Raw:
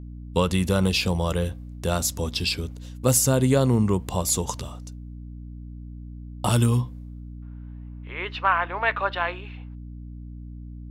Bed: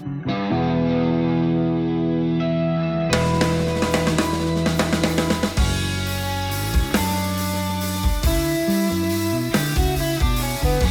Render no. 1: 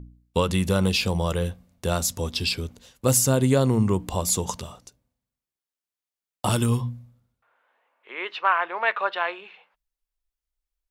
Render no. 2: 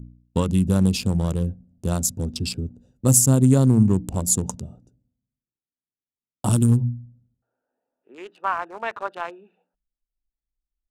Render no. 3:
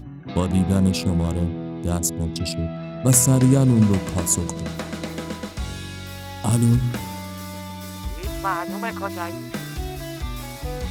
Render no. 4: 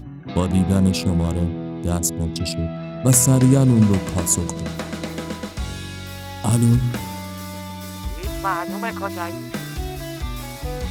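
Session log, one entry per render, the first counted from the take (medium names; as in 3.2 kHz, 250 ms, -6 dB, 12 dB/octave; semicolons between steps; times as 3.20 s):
de-hum 60 Hz, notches 5
local Wiener filter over 41 samples; graphic EQ 125/250/500/2000/4000/8000 Hz +5/+6/-4/-8/-5/+8 dB
add bed -10.5 dB
trim +1.5 dB; peak limiter -3 dBFS, peak gain reduction 1.5 dB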